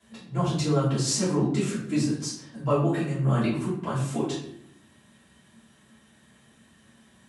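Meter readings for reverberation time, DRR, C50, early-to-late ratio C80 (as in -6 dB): 0.70 s, -12.5 dB, 3.5 dB, 7.0 dB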